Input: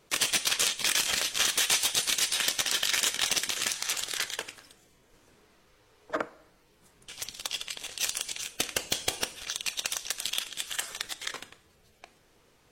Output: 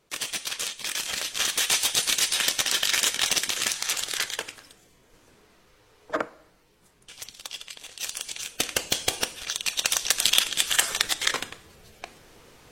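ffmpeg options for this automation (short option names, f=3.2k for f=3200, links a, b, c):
-af "volume=18dB,afade=t=in:st=0.89:d=1.12:silence=0.398107,afade=t=out:st=6.16:d=1.21:silence=0.446684,afade=t=in:st=8:d=0.7:silence=0.421697,afade=t=in:st=9.64:d=0.6:silence=0.446684"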